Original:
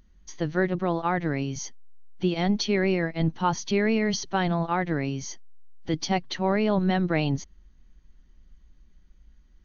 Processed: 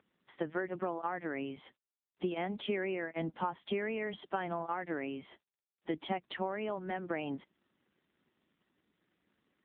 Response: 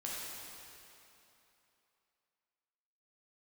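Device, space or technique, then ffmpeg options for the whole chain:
voicemail: -af "highpass=310,lowpass=2800,acompressor=threshold=0.0316:ratio=12" -ar 8000 -c:a libopencore_amrnb -b:a 7950

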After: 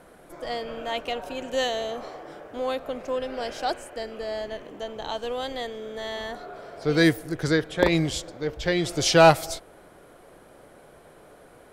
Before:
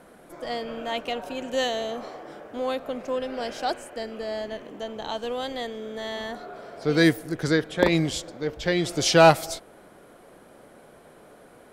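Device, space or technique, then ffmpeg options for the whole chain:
low shelf boost with a cut just above: -af "lowshelf=f=91:g=6.5,equalizer=f=220:t=o:w=0.55:g=-5.5"

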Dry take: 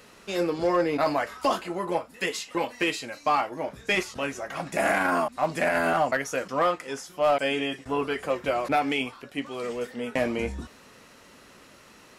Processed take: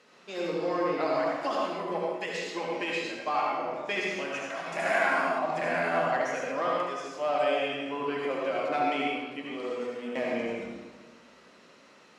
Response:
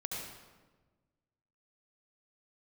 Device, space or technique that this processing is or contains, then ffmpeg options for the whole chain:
supermarket ceiling speaker: -filter_complex "[0:a]highpass=220,lowpass=6000[s0];[1:a]atrim=start_sample=2205[s1];[s0][s1]afir=irnorm=-1:irlink=0,asettb=1/sr,asplit=3[s2][s3][s4];[s2]atrim=end=4.344[s5];[s3]atrim=start=4.34:end=5.39,asetpts=PTS-STARTPTS,afade=t=in:d=0.004:c=qsin,afade=t=out:st=1.046:d=0.004:c=qsin,tiltshelf=f=650:g=-4[s6];[s4]atrim=start=5.386[s7];[s5][s6]acrossfade=d=0.004:c1=hsin:c2=qsin[s8];[s8][s7]acrossfade=d=0.004:c1=qsin:c2=hsin,volume=0.596"

